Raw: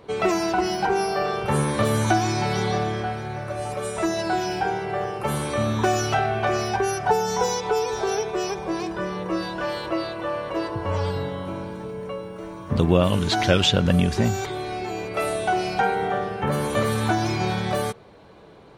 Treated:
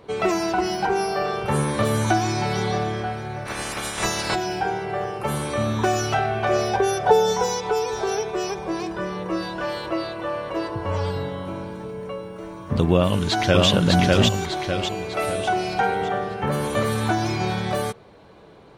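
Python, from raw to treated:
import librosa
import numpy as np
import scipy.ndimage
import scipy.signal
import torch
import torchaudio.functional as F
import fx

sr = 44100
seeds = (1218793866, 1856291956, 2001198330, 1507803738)

y = fx.spec_clip(x, sr, under_db=25, at=(3.45, 4.34), fade=0.02)
y = fx.small_body(y, sr, hz=(520.0, 3500.0), ring_ms=30, db=fx.line((6.49, 12.0), (7.32, 15.0)), at=(6.49, 7.32), fade=0.02)
y = fx.echo_throw(y, sr, start_s=12.94, length_s=0.74, ms=600, feedback_pct=45, wet_db=-0.5)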